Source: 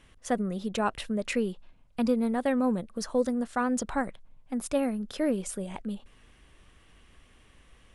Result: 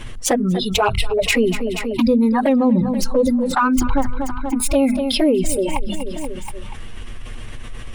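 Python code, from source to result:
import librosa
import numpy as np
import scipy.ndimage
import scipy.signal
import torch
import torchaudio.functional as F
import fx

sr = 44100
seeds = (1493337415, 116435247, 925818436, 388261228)

p1 = fx.tracing_dist(x, sr, depth_ms=0.045)
p2 = fx.noise_reduce_blind(p1, sr, reduce_db=24)
p3 = fx.low_shelf(p2, sr, hz=120.0, db=11.5)
p4 = np.clip(p3, -10.0 ** (-22.0 / 20.0), 10.0 ** (-22.0 / 20.0))
p5 = p3 + (p4 * librosa.db_to_amplitude(-11.5))
p6 = fx.env_flanger(p5, sr, rest_ms=8.6, full_db=-20.5)
p7 = fx.hum_notches(p6, sr, base_hz=50, count=5)
p8 = p7 + fx.echo_feedback(p7, sr, ms=240, feedback_pct=51, wet_db=-20.0, dry=0)
p9 = fx.env_flatten(p8, sr, amount_pct=70)
y = p9 * librosa.db_to_amplitude(8.0)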